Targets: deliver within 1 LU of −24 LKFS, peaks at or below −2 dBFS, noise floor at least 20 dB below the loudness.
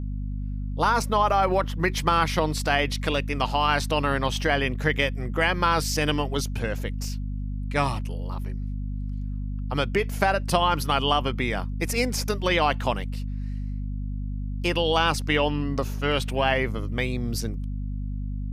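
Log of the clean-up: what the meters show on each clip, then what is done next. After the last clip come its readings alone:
mains hum 50 Hz; hum harmonics up to 250 Hz; level of the hum −27 dBFS; integrated loudness −25.5 LKFS; sample peak −6.0 dBFS; target loudness −24.0 LKFS
→ hum removal 50 Hz, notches 5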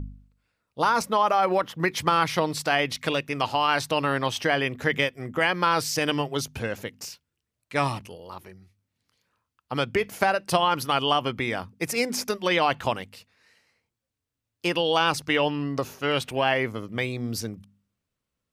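mains hum none found; integrated loudness −25.0 LKFS; sample peak −6.0 dBFS; target loudness −24.0 LKFS
→ level +1 dB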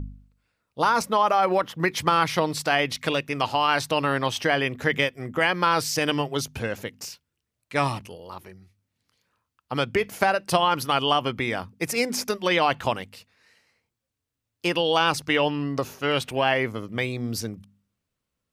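integrated loudness −24.0 LKFS; sample peak −5.0 dBFS; background noise floor −83 dBFS

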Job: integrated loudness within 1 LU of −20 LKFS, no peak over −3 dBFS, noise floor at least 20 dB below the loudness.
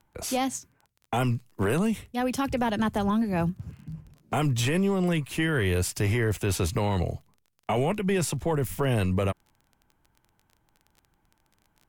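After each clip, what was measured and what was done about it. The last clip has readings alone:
crackle rate 21 per second; integrated loudness −27.0 LKFS; sample peak −16.5 dBFS; target loudness −20.0 LKFS
→ click removal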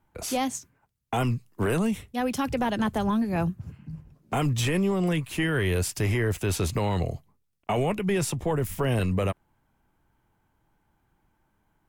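crackle rate 0.25 per second; integrated loudness −27.0 LKFS; sample peak −16.5 dBFS; target loudness −20.0 LKFS
→ level +7 dB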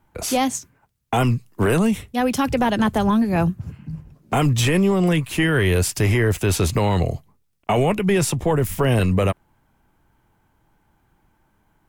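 integrated loudness −20.0 LKFS; sample peak −9.5 dBFS; background noise floor −65 dBFS

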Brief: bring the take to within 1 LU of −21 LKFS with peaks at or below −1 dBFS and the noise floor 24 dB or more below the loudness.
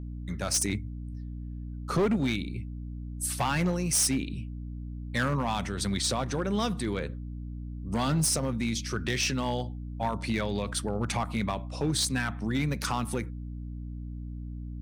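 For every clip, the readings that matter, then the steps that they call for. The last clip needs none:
share of clipped samples 0.9%; peaks flattened at −21.0 dBFS; mains hum 60 Hz; hum harmonics up to 300 Hz; level of the hum −35 dBFS; integrated loudness −30.5 LKFS; sample peak −21.0 dBFS; target loudness −21.0 LKFS
→ clipped peaks rebuilt −21 dBFS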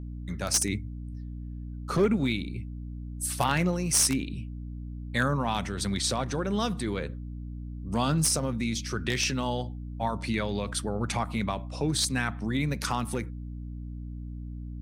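share of clipped samples 0.0%; mains hum 60 Hz; hum harmonics up to 300 Hz; level of the hum −35 dBFS
→ hum removal 60 Hz, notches 5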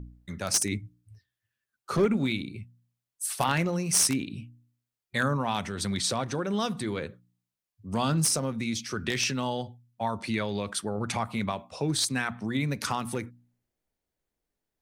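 mains hum none found; integrated loudness −29.0 LKFS; sample peak −11.5 dBFS; target loudness −21.0 LKFS
→ level +8 dB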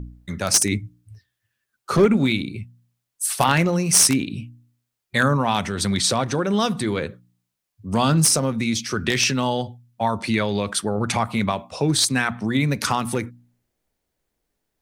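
integrated loudness −21.0 LKFS; sample peak −3.5 dBFS; background noise floor −80 dBFS

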